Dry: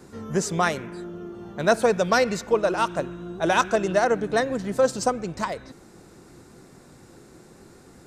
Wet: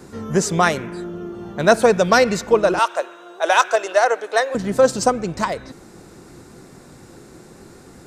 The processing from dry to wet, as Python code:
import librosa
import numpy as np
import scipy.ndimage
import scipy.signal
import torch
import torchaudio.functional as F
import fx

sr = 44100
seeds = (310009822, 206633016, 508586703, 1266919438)

y = fx.highpass(x, sr, hz=500.0, slope=24, at=(2.79, 4.55))
y = y * 10.0 ** (6.0 / 20.0)